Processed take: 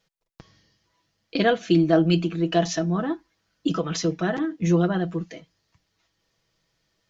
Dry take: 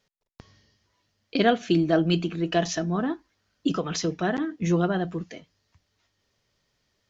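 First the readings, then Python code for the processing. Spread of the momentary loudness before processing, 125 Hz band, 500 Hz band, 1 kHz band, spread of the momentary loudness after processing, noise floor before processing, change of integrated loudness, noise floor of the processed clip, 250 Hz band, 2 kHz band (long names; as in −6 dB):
10 LU, +3.5 dB, +2.0 dB, 0.0 dB, 11 LU, −75 dBFS, +2.0 dB, −75 dBFS, +2.5 dB, +1.0 dB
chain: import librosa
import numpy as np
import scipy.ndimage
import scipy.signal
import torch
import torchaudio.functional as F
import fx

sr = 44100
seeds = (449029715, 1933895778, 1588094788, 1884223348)

y = x + 0.5 * np.pad(x, (int(6.1 * sr / 1000.0), 0))[:len(x)]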